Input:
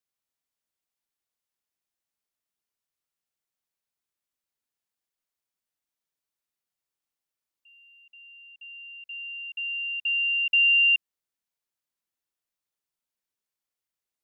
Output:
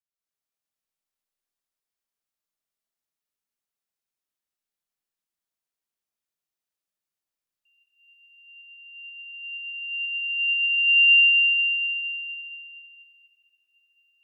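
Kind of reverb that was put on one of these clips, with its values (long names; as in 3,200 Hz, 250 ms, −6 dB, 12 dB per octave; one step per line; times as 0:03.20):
comb and all-pass reverb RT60 4.3 s, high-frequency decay 1×, pre-delay 90 ms, DRR −9.5 dB
level −11.5 dB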